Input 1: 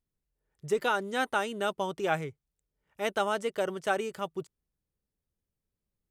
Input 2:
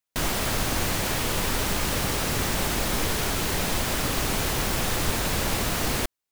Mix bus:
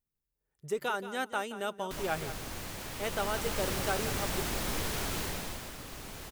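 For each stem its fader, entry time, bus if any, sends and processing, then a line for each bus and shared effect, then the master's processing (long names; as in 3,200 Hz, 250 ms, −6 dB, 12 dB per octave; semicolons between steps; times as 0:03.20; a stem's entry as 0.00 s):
−5.0 dB, 0.00 s, no send, echo send −13 dB, high-shelf EQ 12,000 Hz +11.5 dB
0:02.89 −15 dB → 0:03.65 −8 dB → 0:05.19 −8 dB → 0:05.76 −18.5 dB, 1.75 s, no send, no echo send, no processing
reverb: not used
echo: repeating echo 177 ms, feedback 17%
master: no processing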